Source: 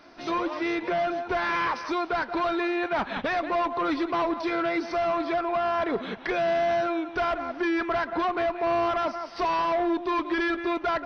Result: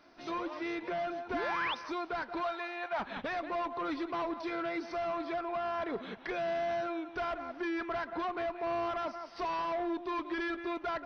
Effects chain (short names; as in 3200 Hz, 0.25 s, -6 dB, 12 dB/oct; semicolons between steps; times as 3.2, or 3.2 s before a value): 1.33–1.75 painted sound rise 240–3800 Hz -28 dBFS; 2.43–3 resonant low shelf 480 Hz -9 dB, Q 1.5; gain -9 dB